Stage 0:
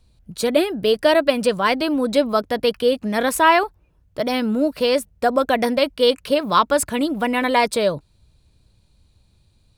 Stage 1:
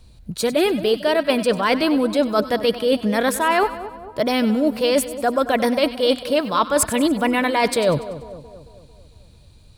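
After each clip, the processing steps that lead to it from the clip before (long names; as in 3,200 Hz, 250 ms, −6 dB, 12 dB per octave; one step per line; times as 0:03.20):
reversed playback
downward compressor 10 to 1, threshold −24 dBFS, peak gain reduction 15 dB
reversed playback
echo with a time of its own for lows and highs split 1,100 Hz, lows 224 ms, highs 96 ms, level −13.5 dB
level +9 dB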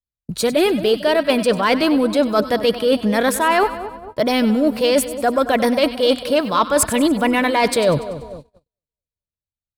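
noise gate −36 dBFS, range −51 dB
in parallel at −8 dB: soft clipping −15.5 dBFS, distortion −13 dB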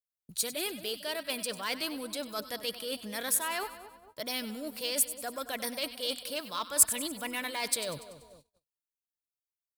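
first-order pre-emphasis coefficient 0.9
level −4 dB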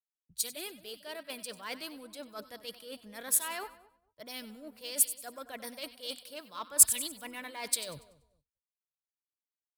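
multiband upward and downward expander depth 100%
level −6.5 dB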